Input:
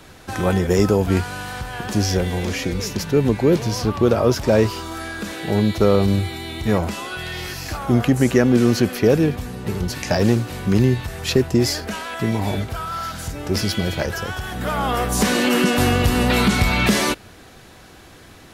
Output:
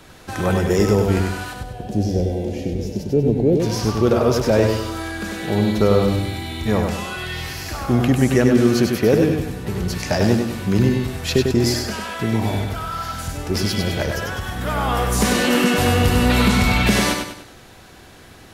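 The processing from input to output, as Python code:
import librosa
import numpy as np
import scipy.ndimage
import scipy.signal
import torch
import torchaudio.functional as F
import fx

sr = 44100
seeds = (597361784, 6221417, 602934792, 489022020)

y = fx.curve_eq(x, sr, hz=(690.0, 1100.0, 2800.0), db=(0, -23, -13), at=(1.53, 3.6))
y = fx.echo_feedback(y, sr, ms=98, feedback_pct=41, wet_db=-4.5)
y = y * 10.0 ** (-1.0 / 20.0)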